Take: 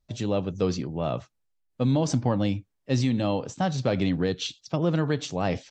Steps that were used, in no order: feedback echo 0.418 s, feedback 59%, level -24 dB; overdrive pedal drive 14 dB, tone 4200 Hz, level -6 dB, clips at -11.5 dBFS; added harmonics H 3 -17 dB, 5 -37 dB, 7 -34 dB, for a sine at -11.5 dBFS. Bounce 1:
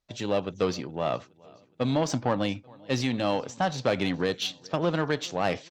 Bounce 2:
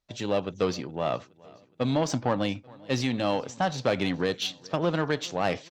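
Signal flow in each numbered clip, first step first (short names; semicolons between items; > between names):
feedback echo > overdrive pedal > added harmonics; overdrive pedal > added harmonics > feedback echo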